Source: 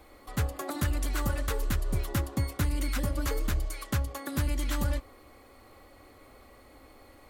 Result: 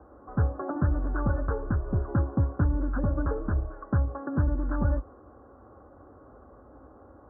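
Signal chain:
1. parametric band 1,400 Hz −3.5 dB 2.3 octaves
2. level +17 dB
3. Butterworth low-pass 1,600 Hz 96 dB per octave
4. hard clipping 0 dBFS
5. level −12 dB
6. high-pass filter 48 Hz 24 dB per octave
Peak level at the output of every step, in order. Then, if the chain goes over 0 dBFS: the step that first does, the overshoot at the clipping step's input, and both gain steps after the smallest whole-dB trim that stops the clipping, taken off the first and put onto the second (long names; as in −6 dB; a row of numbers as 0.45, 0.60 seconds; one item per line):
−19.0, −2.0, −2.0, −2.0, −14.0, −13.0 dBFS
no step passes full scale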